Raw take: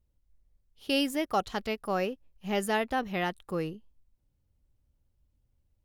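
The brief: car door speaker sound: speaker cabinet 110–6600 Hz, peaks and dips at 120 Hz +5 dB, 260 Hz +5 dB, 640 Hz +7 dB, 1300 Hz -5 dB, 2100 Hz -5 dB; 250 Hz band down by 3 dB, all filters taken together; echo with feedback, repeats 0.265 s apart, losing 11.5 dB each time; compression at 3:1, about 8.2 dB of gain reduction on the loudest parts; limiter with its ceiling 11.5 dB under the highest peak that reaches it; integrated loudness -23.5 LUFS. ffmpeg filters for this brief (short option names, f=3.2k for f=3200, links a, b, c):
-af "equalizer=f=250:t=o:g=-7,acompressor=threshold=-35dB:ratio=3,alimiter=level_in=11dB:limit=-24dB:level=0:latency=1,volume=-11dB,highpass=110,equalizer=f=120:t=q:w=4:g=5,equalizer=f=260:t=q:w=4:g=5,equalizer=f=640:t=q:w=4:g=7,equalizer=f=1.3k:t=q:w=4:g=-5,equalizer=f=2.1k:t=q:w=4:g=-5,lowpass=f=6.6k:w=0.5412,lowpass=f=6.6k:w=1.3066,aecho=1:1:265|530|795:0.266|0.0718|0.0194,volume=20.5dB"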